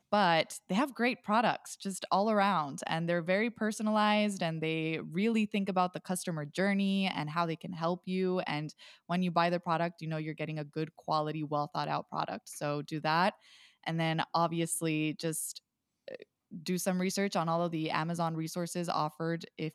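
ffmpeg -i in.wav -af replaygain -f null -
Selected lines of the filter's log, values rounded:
track_gain = +12.2 dB
track_peak = 0.141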